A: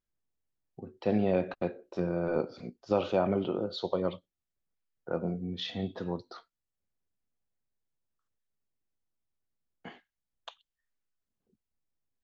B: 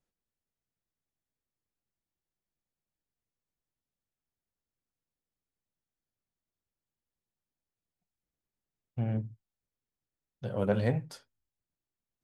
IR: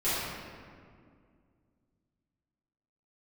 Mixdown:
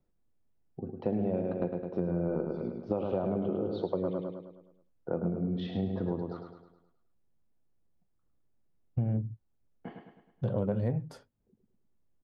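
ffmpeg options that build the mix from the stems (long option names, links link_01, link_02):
-filter_complex "[0:a]lowpass=4200,volume=-3dB,asplit=2[link_01][link_02];[link_02]volume=-5.5dB[link_03];[1:a]volume=2.5dB[link_04];[link_03]aecho=0:1:105|210|315|420|525|630|735:1|0.49|0.24|0.118|0.0576|0.0282|0.0138[link_05];[link_01][link_04][link_05]amix=inputs=3:normalize=0,tiltshelf=frequency=1200:gain=9,acompressor=threshold=-27dB:ratio=6"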